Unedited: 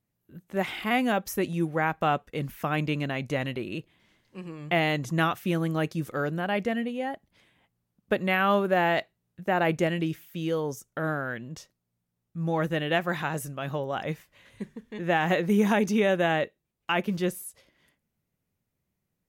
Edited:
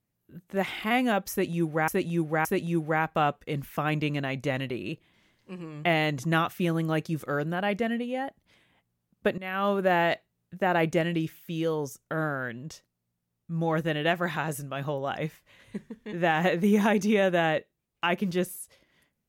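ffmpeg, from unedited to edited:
-filter_complex "[0:a]asplit=4[a][b][c][d];[a]atrim=end=1.882[e];[b]atrim=start=1.308:end=1.882[f];[c]atrim=start=1.308:end=8.24,asetpts=PTS-STARTPTS,afade=t=out:st=6.928:d=0.004:c=hsin:silence=0.11885[g];[d]atrim=start=8.24,asetpts=PTS-STARTPTS,afade=t=in:d=0.44:silence=0.11885[h];[e][f]acrossfade=d=0.004:c1=hsin:c2=hsin[i];[g][h]concat=n=2:v=0:a=1[j];[i][j]acrossfade=d=0.004:c1=hsin:c2=hsin"

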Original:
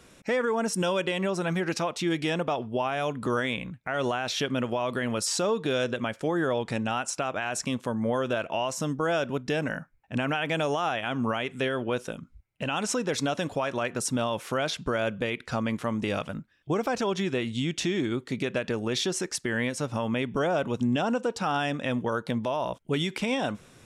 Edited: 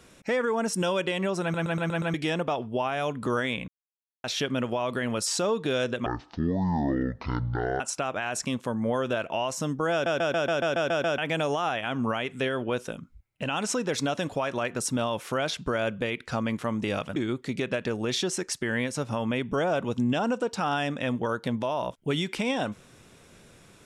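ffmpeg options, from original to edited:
-filter_complex "[0:a]asplit=21[a][b][c][d][e][f][g][h][i][j][k][l][m][n][o][p][q][r][s][t][u];[a]atrim=end=1.542[v];[b]atrim=start=1.418:end=1.542[w];[c]atrim=start=1.418:end=1.542[x];[d]atrim=start=1.418:end=1.542[y];[e]atrim=start=1.418:end=1.542[z];[f]atrim=start=1.418:end=1.542[aa];[g]atrim=start=2.138:end=3.68,asetpts=PTS-STARTPTS,afade=t=out:st=1.538:d=0.004:c=hsin[ab];[h]atrim=start=3.68:end=4.24,asetpts=PTS-STARTPTS,volume=0[ac];[i]atrim=start=4.24:end=6.064,asetpts=PTS-STARTPTS,afade=t=in:d=0.004:c=hsin[ad];[j]atrim=start=6.06:end=7,asetpts=PTS-STARTPTS,asetrate=23814,aresample=44100[ae];[k]atrim=start=6.996:end=9.262[af];[l]atrim=start=9.118:end=9.262[ag];[m]atrim=start=9.118:end=9.262[ah];[n]atrim=start=9.118:end=9.262[ai];[o]atrim=start=9.118:end=9.262[aj];[p]atrim=start=9.118:end=9.262[ak];[q]atrim=start=9.118:end=9.262[al];[r]atrim=start=9.118:end=9.262[am];[s]atrim=start=9.118:end=9.262[an];[t]atrim=start=10.378:end=16.362[ao];[u]atrim=start=17.988[ap];[v][w]acrossfade=d=0.004:c1=hsin:c2=hsin[aq];[aq][x]acrossfade=d=0.004:c1=hsin:c2=hsin[ar];[ar][y]acrossfade=d=0.004:c1=hsin:c2=hsin[as];[as][z]acrossfade=d=0.004:c1=hsin:c2=hsin[at];[at][aa]acrossfade=d=0.004:c1=hsin:c2=hsin[au];[ab][ac][ad]concat=n=3:v=0:a=1[av];[au][av]acrossfade=d=0.004:c1=hsin:c2=hsin[aw];[aw][ae]acrossfade=d=0.004:c1=hsin:c2=hsin[ax];[ax][af]acrossfade=d=0.004:c1=hsin:c2=hsin[ay];[ay][ag]acrossfade=d=0.004:c1=hsin:c2=hsin[az];[az][ah]acrossfade=d=0.004:c1=hsin:c2=hsin[ba];[ba][ai]acrossfade=d=0.004:c1=hsin:c2=hsin[bb];[bb][aj]acrossfade=d=0.004:c1=hsin:c2=hsin[bc];[bc][ak]acrossfade=d=0.004:c1=hsin:c2=hsin[bd];[bd][al]acrossfade=d=0.004:c1=hsin:c2=hsin[be];[be][am]acrossfade=d=0.004:c1=hsin:c2=hsin[bf];[bf][an]acrossfade=d=0.004:c1=hsin:c2=hsin[bg];[bg][ao]acrossfade=d=0.004:c1=hsin:c2=hsin[bh];[bh][ap]acrossfade=d=0.004:c1=hsin:c2=hsin"

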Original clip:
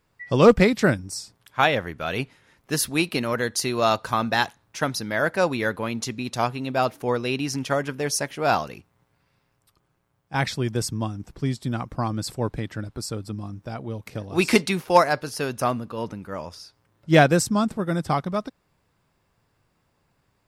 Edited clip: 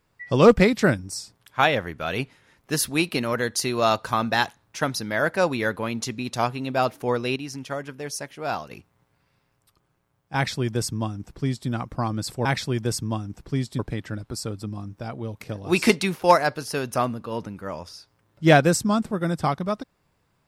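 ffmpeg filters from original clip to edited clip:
-filter_complex "[0:a]asplit=5[a][b][c][d][e];[a]atrim=end=7.362[f];[b]atrim=start=7.358:end=8.712,asetpts=PTS-STARTPTS,volume=-7dB[g];[c]atrim=start=8.708:end=12.452[h];[d]atrim=start=10.348:end=11.692[i];[e]atrim=start=12.448[j];[f][g]acrossfade=d=0.004:c1=hsin:c2=hsin[k];[k][h]acrossfade=d=0.004:c1=hsin:c2=hsin[l];[l][i]acrossfade=d=0.004:c1=hsin:c2=hsin[m];[m][j]acrossfade=d=0.004:c1=hsin:c2=hsin"

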